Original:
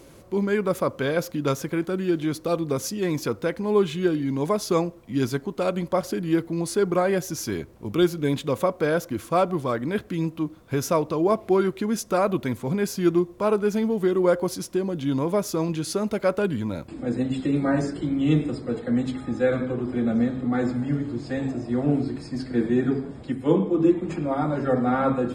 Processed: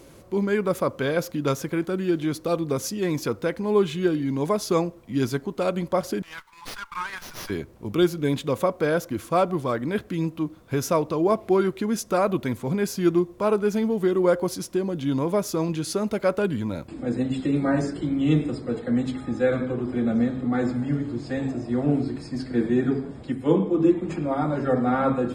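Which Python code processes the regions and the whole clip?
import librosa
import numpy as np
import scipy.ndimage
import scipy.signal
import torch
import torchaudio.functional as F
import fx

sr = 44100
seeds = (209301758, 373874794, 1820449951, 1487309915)

y = fx.chain(x, sr, fx.brickwall_highpass(low_hz=840.0),
    fx.running_max(window=5), at=(6.22, 7.5))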